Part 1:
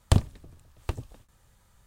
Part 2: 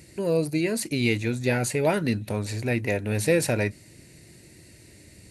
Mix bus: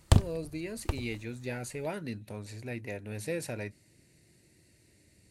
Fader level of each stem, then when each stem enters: -1.0, -13.0 dB; 0.00, 0.00 s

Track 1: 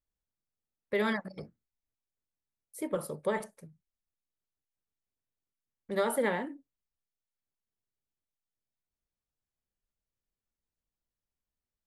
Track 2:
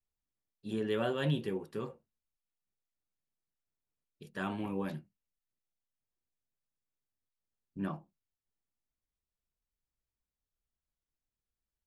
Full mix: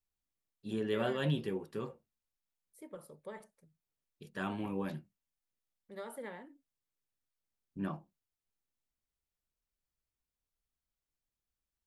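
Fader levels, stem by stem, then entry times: -15.5, -1.0 dB; 0.00, 0.00 s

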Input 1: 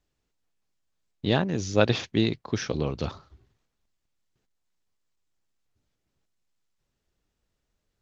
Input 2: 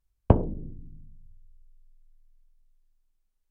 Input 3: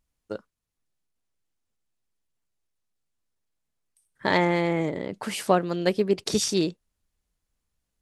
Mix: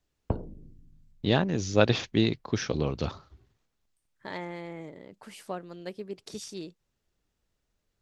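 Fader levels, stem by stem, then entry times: -0.5, -11.0, -15.5 dB; 0.00, 0.00, 0.00 s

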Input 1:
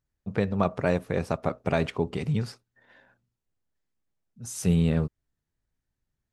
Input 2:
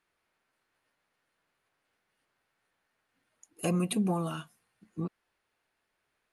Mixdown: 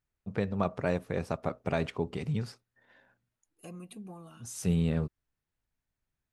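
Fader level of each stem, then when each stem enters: -5.0, -16.5 dB; 0.00, 0.00 s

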